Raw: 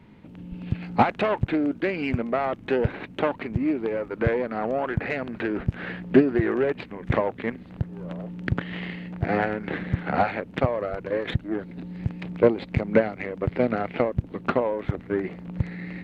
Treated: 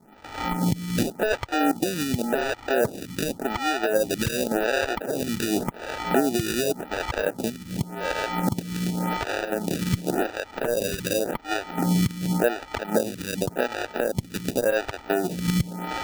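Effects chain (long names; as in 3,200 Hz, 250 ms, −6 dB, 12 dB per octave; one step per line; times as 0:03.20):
camcorder AGC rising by 49 dB per second
linear-phase brick-wall low-pass 1,600 Hz
decimation without filtering 41×
low-shelf EQ 170 Hz −6.5 dB
boost into a limiter +7 dB
phaser with staggered stages 0.89 Hz
level −7 dB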